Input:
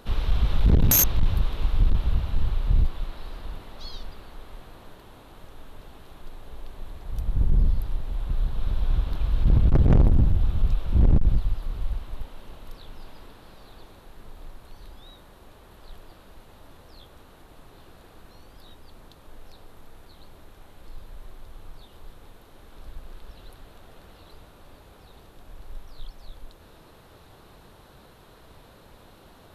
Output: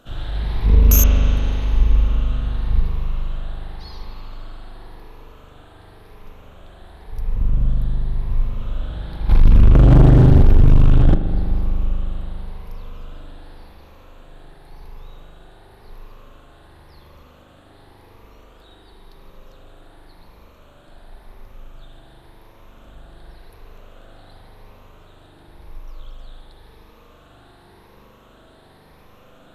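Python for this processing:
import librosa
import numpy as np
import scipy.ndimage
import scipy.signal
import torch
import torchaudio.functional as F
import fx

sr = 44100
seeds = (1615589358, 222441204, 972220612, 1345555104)

y = fx.spec_ripple(x, sr, per_octave=0.86, drift_hz=0.92, depth_db=10)
y = fx.rev_spring(y, sr, rt60_s=3.6, pass_ms=(40,), chirp_ms=40, drr_db=-4.5)
y = fx.leveller(y, sr, passes=3, at=(9.29, 11.15))
y = y * librosa.db_to_amplitude(-4.0)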